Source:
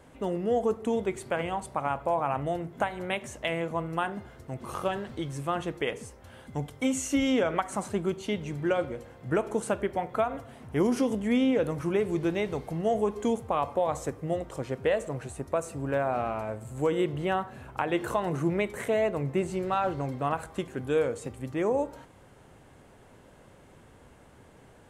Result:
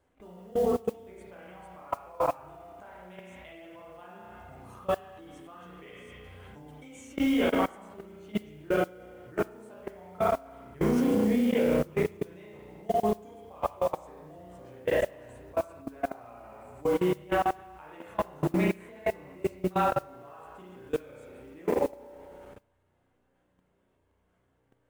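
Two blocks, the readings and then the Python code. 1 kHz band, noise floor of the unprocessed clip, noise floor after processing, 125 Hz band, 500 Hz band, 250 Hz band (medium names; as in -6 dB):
-2.5 dB, -55 dBFS, -72 dBFS, -4.0 dB, -2.0 dB, -1.5 dB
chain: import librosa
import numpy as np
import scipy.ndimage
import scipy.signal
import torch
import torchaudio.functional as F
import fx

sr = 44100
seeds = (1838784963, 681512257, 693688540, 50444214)

p1 = x + fx.echo_single(x, sr, ms=73, db=-24.0, dry=0)
p2 = fx.rev_spring(p1, sr, rt60_s=1.5, pass_ms=(33,), chirp_ms=45, drr_db=-5.5)
p3 = fx.chorus_voices(p2, sr, voices=4, hz=0.97, base_ms=13, depth_ms=3.0, mix_pct=45)
p4 = fx.level_steps(p3, sr, step_db=24)
y = fx.mod_noise(p4, sr, seeds[0], snr_db=26)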